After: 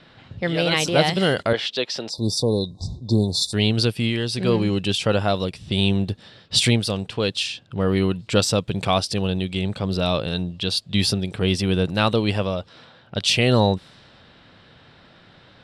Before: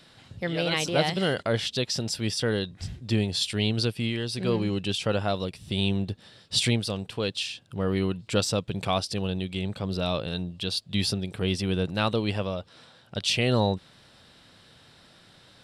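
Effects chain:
low-pass that shuts in the quiet parts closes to 2,800 Hz, open at −25 dBFS
0:02.09–0:03.53: time-frequency box erased 1,100–3,500 Hz
0:01.53–0:02.18: three-way crossover with the lows and the highs turned down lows −20 dB, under 290 Hz, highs −17 dB, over 4,900 Hz
level +6 dB

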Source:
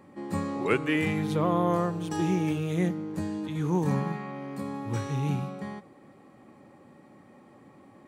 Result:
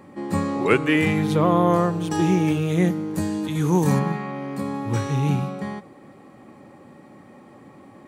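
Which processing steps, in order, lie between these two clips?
0:02.87–0:03.98: high-shelf EQ 8,400 Hz → 5,100 Hz +11.5 dB
level +7 dB

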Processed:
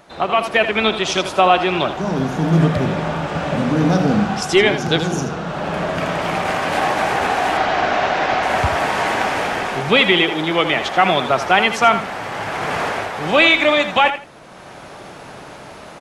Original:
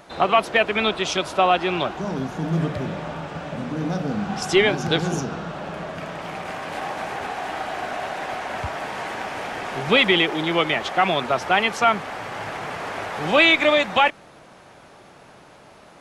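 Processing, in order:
0:07.57–0:08.43: low-pass filter 6,100 Hz 24 dB per octave
on a send: repeating echo 81 ms, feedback 18%, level −10.5 dB
on the sum: automatic gain control gain up to 12 dB
level −1 dB

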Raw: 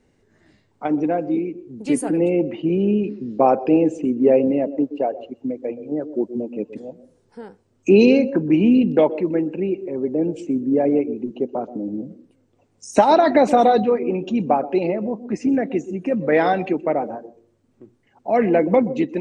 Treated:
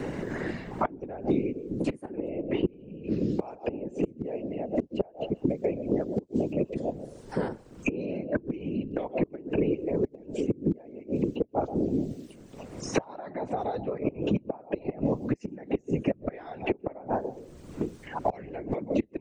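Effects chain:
gate with flip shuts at −13 dBFS, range −29 dB
random phases in short frames
multiband upward and downward compressor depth 100%

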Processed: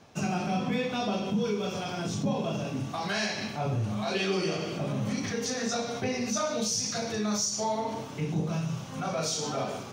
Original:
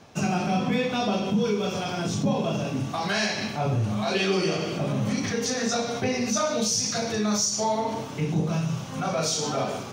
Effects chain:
0:05.09–0:05.59: surface crackle 570 per second −52 dBFS
level −4.5 dB

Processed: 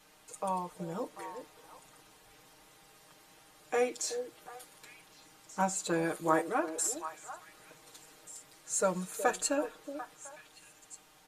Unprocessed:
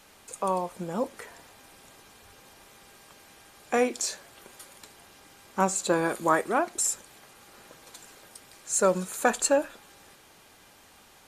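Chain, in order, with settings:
comb filter 6.5 ms, depth 99%
on a send: echo through a band-pass that steps 371 ms, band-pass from 400 Hz, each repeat 1.4 octaves, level −7 dB
on the sum: level −9 dB

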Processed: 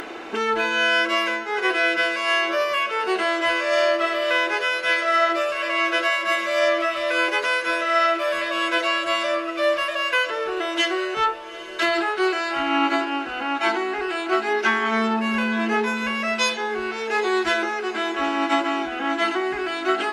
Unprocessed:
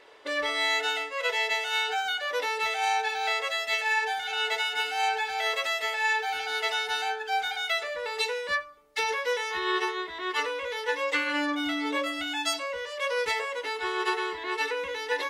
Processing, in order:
upward compression, threshold −30 dBFS
speed change −24%
feedback delay with all-pass diffusion 846 ms, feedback 57%, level −15 dB
level +6.5 dB

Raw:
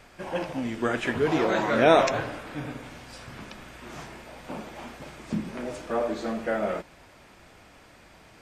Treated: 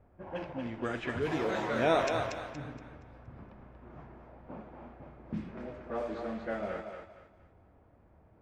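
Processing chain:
low-pass that shuts in the quiet parts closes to 700 Hz, open at −20 dBFS
parametric band 78 Hz +9.5 dB 1.1 octaves
feedback echo with a high-pass in the loop 235 ms, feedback 33%, high-pass 410 Hz, level −5 dB
level −9 dB

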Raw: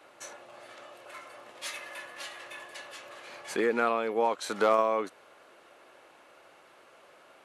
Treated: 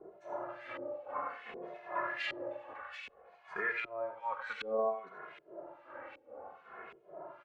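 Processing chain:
0:02.73–0:04.60: guitar amp tone stack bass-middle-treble 10-0-10
downward compressor 8 to 1, threshold −35 dBFS, peak gain reduction 16 dB
two-band tremolo in antiphase 2.5 Hz, depth 100%, crossover 2,100 Hz
slap from a distant wall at 16 metres, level −12 dB
reverb whose tail is shaped and stops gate 100 ms rising, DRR 7.5 dB
auto-filter low-pass saw up 1.3 Hz 360–2,500 Hz
barber-pole flanger 2.4 ms −0.58 Hz
level +10 dB

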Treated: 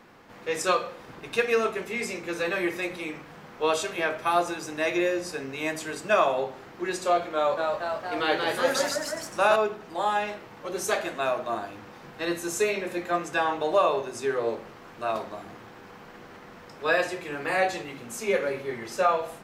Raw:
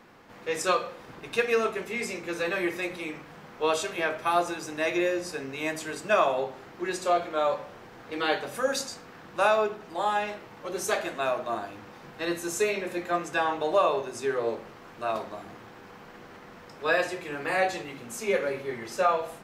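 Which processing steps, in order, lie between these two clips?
0:07.34–0:09.56: delay with pitch and tempo change per echo 230 ms, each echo +1 semitone, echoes 3
level +1 dB

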